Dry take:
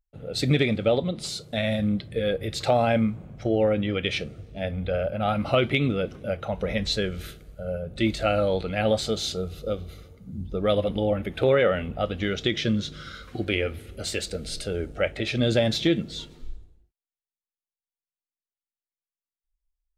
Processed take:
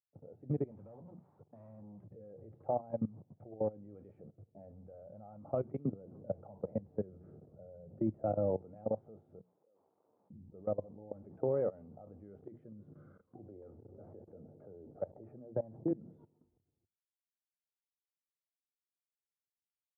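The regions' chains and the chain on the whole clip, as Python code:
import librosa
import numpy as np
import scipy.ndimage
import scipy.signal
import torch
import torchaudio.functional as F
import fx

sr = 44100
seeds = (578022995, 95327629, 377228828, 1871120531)

y = fx.chain(x, sr, fx.tone_stack(knobs='5-5-5'),
    fx.leveller(passes=5),
    fx.band_squash(depth_pct=40), at=(0.71, 2.04))
y = fx.chain(y, sr, fx.tilt_shelf(db=4.0, hz=1400.0),
    fx.band_squash(depth_pct=40), at=(5.85, 8.74))
y = fx.chain(y, sr, fx.delta_mod(bps=32000, step_db=-32.0),
    fx.level_steps(step_db=23),
    fx.highpass(hz=370.0, slope=12), at=(9.39, 10.3))
y = fx.chain(y, sr, fx.filter_lfo_lowpass(shape='saw_down', hz=3.1, low_hz=680.0, high_hz=1800.0, q=1.1),
    fx.band_squash(depth_pct=40), at=(13.3, 15.91))
y = fx.hum_notches(y, sr, base_hz=60, count=4)
y = fx.level_steps(y, sr, step_db=21)
y = scipy.signal.sosfilt(scipy.signal.ellip(3, 1.0, 60, [100.0, 900.0], 'bandpass', fs=sr, output='sos'), y)
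y = y * 10.0 ** (-9.0 / 20.0)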